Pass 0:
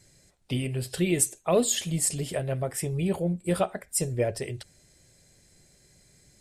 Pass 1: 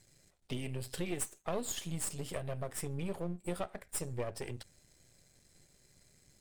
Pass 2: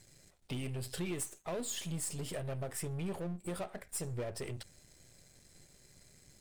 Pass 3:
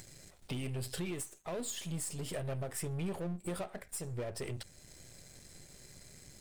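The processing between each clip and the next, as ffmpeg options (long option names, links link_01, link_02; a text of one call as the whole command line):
ffmpeg -i in.wav -af "aeval=exprs='if(lt(val(0),0),0.251*val(0),val(0))':channel_layout=same,acompressor=threshold=-32dB:ratio=2.5,volume=-3dB" out.wav
ffmpeg -i in.wav -af "aeval=exprs='(tanh(50.1*val(0)+0.45)-tanh(0.45))/50.1':channel_layout=same,volume=6dB" out.wav
ffmpeg -i in.wav -af "alimiter=level_in=9.5dB:limit=-24dB:level=0:latency=1:release=487,volume=-9.5dB,acompressor=mode=upward:threshold=-49dB:ratio=2.5,volume=2.5dB" out.wav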